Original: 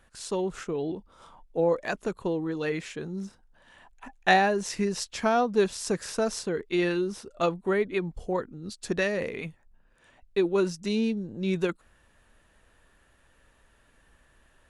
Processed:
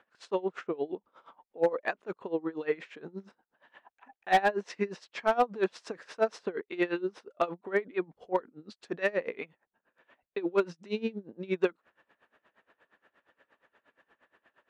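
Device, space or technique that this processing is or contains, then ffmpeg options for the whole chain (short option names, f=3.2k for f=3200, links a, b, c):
helicopter radio: -af "highpass=330,lowpass=2.5k,aeval=exprs='val(0)*pow(10,-22*(0.5-0.5*cos(2*PI*8.5*n/s))/20)':c=same,asoftclip=type=hard:threshold=-20.5dB,volume=4.5dB"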